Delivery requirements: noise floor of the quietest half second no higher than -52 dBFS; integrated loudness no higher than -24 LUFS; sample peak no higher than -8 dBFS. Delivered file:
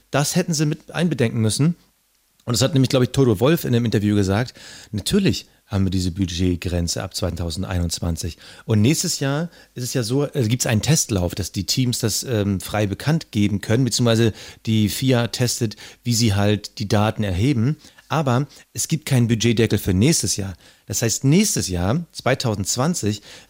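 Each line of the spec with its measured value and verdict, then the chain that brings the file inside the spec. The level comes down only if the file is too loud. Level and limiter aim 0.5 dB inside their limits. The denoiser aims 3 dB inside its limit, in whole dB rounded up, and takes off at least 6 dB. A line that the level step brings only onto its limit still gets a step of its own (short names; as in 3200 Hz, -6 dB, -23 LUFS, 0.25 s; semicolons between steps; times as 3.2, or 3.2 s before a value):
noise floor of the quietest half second -63 dBFS: OK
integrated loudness -20.5 LUFS: fail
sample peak -4.5 dBFS: fail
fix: gain -4 dB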